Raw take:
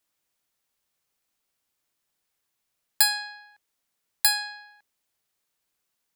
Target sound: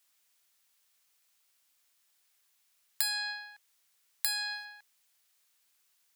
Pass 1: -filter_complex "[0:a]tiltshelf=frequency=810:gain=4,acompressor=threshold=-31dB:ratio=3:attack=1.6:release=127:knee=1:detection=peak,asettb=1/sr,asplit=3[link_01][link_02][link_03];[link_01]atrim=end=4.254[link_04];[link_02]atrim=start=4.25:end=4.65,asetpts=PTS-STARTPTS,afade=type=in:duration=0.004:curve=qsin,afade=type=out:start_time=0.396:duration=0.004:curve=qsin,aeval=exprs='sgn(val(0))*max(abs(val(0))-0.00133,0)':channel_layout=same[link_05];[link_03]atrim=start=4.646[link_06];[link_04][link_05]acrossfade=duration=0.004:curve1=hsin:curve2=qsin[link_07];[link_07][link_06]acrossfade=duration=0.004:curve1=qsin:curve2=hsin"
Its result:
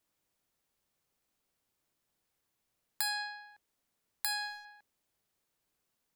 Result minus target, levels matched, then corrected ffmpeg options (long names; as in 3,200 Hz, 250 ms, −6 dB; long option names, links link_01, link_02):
1,000 Hz band +7.0 dB
-filter_complex "[0:a]tiltshelf=frequency=810:gain=-7.5,acompressor=threshold=-31dB:ratio=3:attack=1.6:release=127:knee=1:detection=peak,asettb=1/sr,asplit=3[link_01][link_02][link_03];[link_01]atrim=end=4.254[link_04];[link_02]atrim=start=4.25:end=4.65,asetpts=PTS-STARTPTS,afade=type=in:duration=0.004:curve=qsin,afade=type=out:start_time=0.396:duration=0.004:curve=qsin,aeval=exprs='sgn(val(0))*max(abs(val(0))-0.00133,0)':channel_layout=same[link_05];[link_03]atrim=start=4.646[link_06];[link_04][link_05]acrossfade=duration=0.004:curve1=hsin:curve2=qsin[link_07];[link_07][link_06]acrossfade=duration=0.004:curve1=qsin:curve2=hsin"